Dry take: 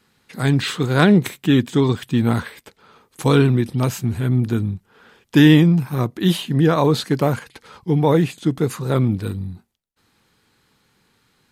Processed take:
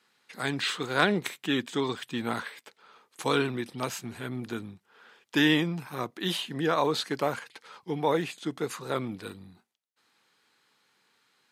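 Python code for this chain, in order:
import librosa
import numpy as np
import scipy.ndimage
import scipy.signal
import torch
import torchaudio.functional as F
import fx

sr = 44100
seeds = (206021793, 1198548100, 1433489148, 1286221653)

y = fx.weighting(x, sr, curve='A')
y = y * librosa.db_to_amplitude(-5.5)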